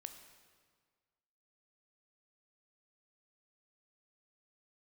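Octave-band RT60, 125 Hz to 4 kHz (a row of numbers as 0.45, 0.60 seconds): 1.8, 1.7, 1.7, 1.7, 1.5, 1.4 seconds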